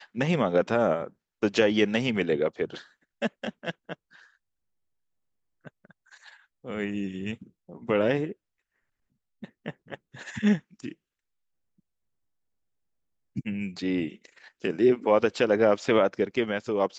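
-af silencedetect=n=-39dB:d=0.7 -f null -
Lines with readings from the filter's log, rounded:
silence_start: 3.93
silence_end: 5.65 | silence_duration: 1.72
silence_start: 8.32
silence_end: 9.43 | silence_duration: 1.10
silence_start: 10.92
silence_end: 13.36 | silence_duration: 2.44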